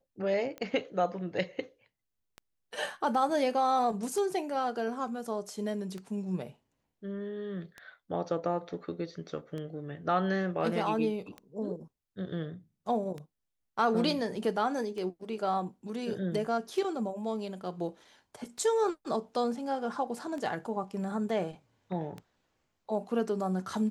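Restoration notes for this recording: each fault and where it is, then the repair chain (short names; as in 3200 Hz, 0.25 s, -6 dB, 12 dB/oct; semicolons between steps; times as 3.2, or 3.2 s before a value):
tick 33 1/3 rpm -27 dBFS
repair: de-click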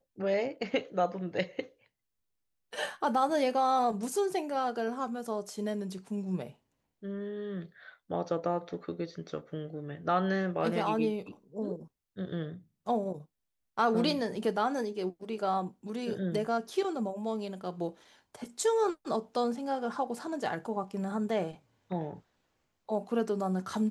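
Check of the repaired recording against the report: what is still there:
none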